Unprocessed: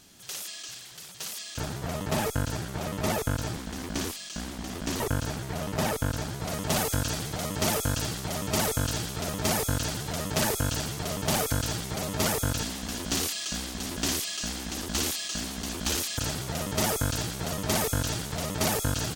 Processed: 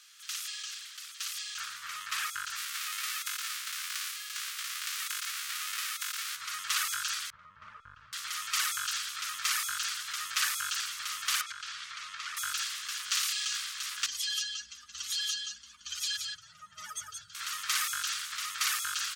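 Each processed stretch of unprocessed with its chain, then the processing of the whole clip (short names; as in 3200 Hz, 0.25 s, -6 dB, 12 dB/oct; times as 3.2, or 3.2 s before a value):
2.56–6.35 spectral whitening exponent 0.3 + HPF 670 Hz + compressor 4:1, threshold -31 dBFS
7.3–8.13 Chebyshev low-pass 580 Hz + low shelf 160 Hz +10 dB
11.41–12.37 compressor 5:1, threshold -29 dBFS + air absorption 100 m
14.06–17.35 spectral contrast raised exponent 2.5 + echo 0.175 s -4.5 dB
whole clip: elliptic high-pass 1200 Hz, stop band 40 dB; high shelf 8600 Hz -7.5 dB; gain +2.5 dB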